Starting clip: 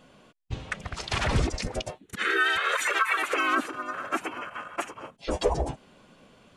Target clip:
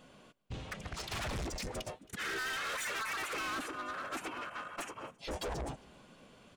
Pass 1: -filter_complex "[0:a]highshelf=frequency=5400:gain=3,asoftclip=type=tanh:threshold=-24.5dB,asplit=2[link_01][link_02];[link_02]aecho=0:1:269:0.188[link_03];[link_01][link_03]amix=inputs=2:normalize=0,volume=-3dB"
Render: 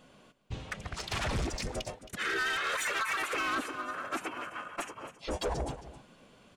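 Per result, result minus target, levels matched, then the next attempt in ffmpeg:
echo-to-direct +10.5 dB; soft clipping: distortion −5 dB
-filter_complex "[0:a]highshelf=frequency=5400:gain=3,asoftclip=type=tanh:threshold=-24.5dB,asplit=2[link_01][link_02];[link_02]aecho=0:1:269:0.0562[link_03];[link_01][link_03]amix=inputs=2:normalize=0,volume=-3dB"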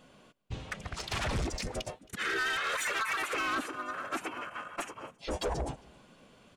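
soft clipping: distortion −5 dB
-filter_complex "[0:a]highshelf=frequency=5400:gain=3,asoftclip=type=tanh:threshold=-32.5dB,asplit=2[link_01][link_02];[link_02]aecho=0:1:269:0.0562[link_03];[link_01][link_03]amix=inputs=2:normalize=0,volume=-3dB"

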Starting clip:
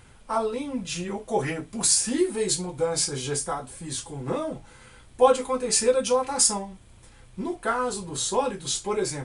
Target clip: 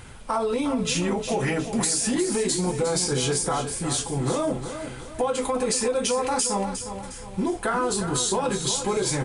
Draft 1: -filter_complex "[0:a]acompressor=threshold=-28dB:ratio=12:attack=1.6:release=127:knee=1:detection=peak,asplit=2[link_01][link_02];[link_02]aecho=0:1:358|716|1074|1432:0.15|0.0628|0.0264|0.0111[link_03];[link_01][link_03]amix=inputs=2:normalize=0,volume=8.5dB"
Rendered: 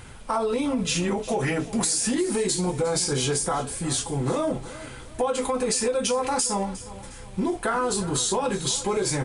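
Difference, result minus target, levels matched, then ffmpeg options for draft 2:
echo-to-direct −7 dB
-filter_complex "[0:a]acompressor=threshold=-28dB:ratio=12:attack=1.6:release=127:knee=1:detection=peak,asplit=2[link_01][link_02];[link_02]aecho=0:1:358|716|1074|1432|1790:0.335|0.141|0.0591|0.0248|0.0104[link_03];[link_01][link_03]amix=inputs=2:normalize=0,volume=8.5dB"

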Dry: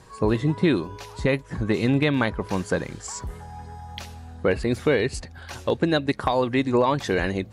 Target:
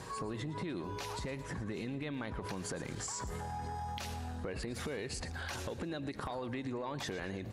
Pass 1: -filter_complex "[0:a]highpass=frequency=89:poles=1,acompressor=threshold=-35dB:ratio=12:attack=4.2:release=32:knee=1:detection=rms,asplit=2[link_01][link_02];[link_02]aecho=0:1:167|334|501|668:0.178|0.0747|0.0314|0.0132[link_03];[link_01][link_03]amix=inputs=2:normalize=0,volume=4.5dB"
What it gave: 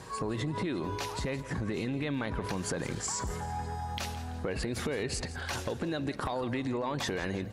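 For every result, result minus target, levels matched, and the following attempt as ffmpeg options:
echo 55 ms late; downward compressor: peak gain reduction −6.5 dB
-filter_complex "[0:a]highpass=frequency=89:poles=1,acompressor=threshold=-35dB:ratio=12:attack=4.2:release=32:knee=1:detection=rms,asplit=2[link_01][link_02];[link_02]aecho=0:1:112|224|336|448:0.178|0.0747|0.0314|0.0132[link_03];[link_01][link_03]amix=inputs=2:normalize=0,volume=4.5dB"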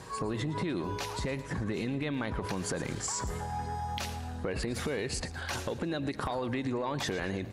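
downward compressor: peak gain reduction −6.5 dB
-filter_complex "[0:a]highpass=frequency=89:poles=1,acompressor=threshold=-42dB:ratio=12:attack=4.2:release=32:knee=1:detection=rms,asplit=2[link_01][link_02];[link_02]aecho=0:1:112|224|336|448:0.178|0.0747|0.0314|0.0132[link_03];[link_01][link_03]amix=inputs=2:normalize=0,volume=4.5dB"

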